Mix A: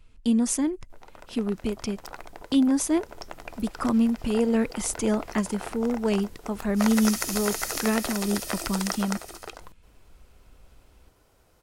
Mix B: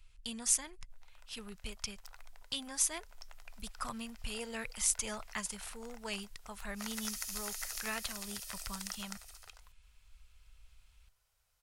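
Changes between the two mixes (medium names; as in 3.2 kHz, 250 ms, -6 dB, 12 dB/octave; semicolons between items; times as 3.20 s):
background -9.0 dB; master: add amplifier tone stack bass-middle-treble 10-0-10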